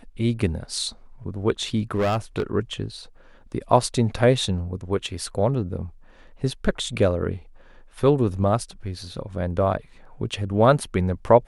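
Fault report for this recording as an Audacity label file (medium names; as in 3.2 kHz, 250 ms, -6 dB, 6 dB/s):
1.940000	2.430000	clipped -18.5 dBFS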